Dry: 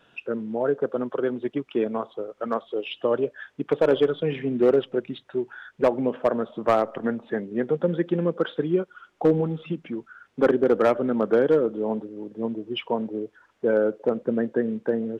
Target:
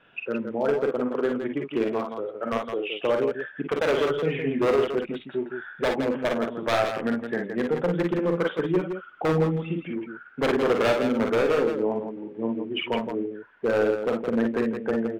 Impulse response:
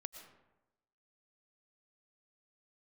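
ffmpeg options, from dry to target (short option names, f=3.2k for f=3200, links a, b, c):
-af "lowpass=f=2.4k:t=q:w=1.8,aeval=exprs='0.178*(abs(mod(val(0)/0.178+3,4)-2)-1)':c=same,aecho=1:1:44|56|166:0.501|0.447|0.447,volume=-2dB"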